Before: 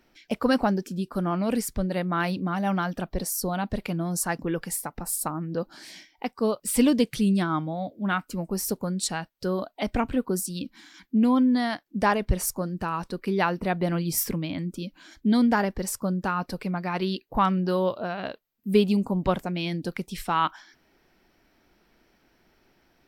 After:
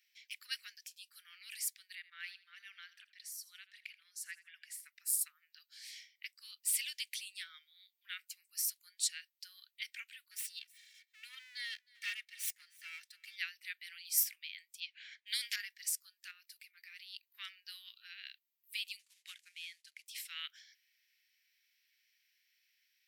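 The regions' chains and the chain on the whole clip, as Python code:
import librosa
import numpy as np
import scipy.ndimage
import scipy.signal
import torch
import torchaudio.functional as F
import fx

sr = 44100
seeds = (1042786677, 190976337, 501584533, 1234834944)

y = fx.chain(x, sr, fx.lowpass(hz=2000.0, slope=6),
    fx.echo_feedback(ms=81, feedback_pct=32, wet_db=-16.5), at=(1.95, 4.87))
y = fx.chain(y, sr, fx.lower_of_two(delay_ms=2.2),
    fx.tilt_shelf(db=4.5, hz=1400.0),
    fx.echo_single(ms=313, db=-24.0), at=(10.31, 13.36))
y = fx.chain(y, sr, fx.env_lowpass(base_hz=1500.0, full_db=-19.5),
    fx.spectral_comp(ratio=2.0), at=(14.8, 15.56))
y = fx.chain(y, sr, fx.level_steps(step_db=12),
    fx.high_shelf(hz=9600.0, db=9.5), at=(16.31, 17.24))
y = fx.chain(y, sr, fx.cvsd(bps=64000),
    fx.high_shelf(hz=10000.0, db=-10.0),
    fx.upward_expand(threshold_db=-41.0, expansion=1.5), at=(18.99, 20.06))
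y = scipy.signal.sosfilt(scipy.signal.butter(8, 1900.0, 'highpass', fs=sr, output='sos'), y)
y = fx.high_shelf(y, sr, hz=11000.0, db=4.0)
y = y * librosa.db_to_amplitude(-5.5)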